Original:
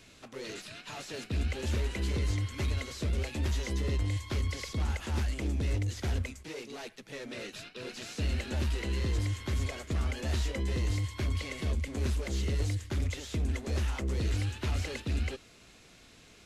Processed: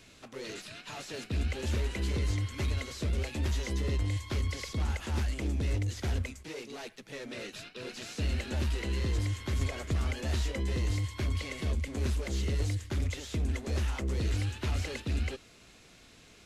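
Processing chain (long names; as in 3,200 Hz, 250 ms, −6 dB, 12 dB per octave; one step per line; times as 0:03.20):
0:09.61–0:10.13: multiband upward and downward compressor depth 100%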